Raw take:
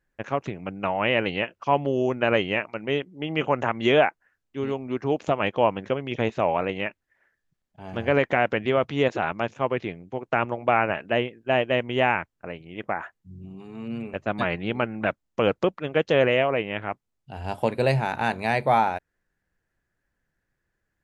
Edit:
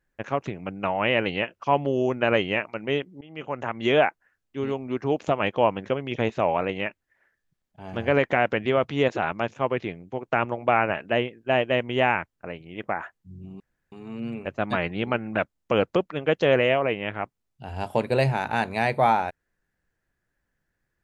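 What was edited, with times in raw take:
3.21–4.08 fade in, from -22 dB
13.6 insert room tone 0.32 s

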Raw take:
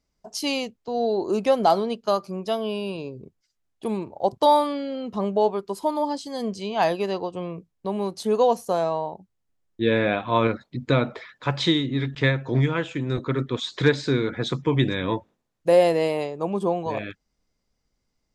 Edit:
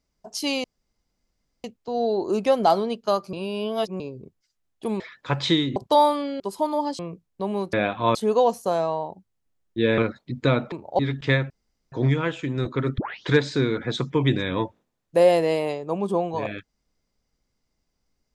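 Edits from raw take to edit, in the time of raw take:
0.64 insert room tone 1.00 s
2.33–3 reverse
4–4.27 swap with 11.17–11.93
4.91–5.64 cut
6.23–7.44 cut
10.01–10.43 move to 8.18
12.44 insert room tone 0.42 s
13.5 tape start 0.30 s

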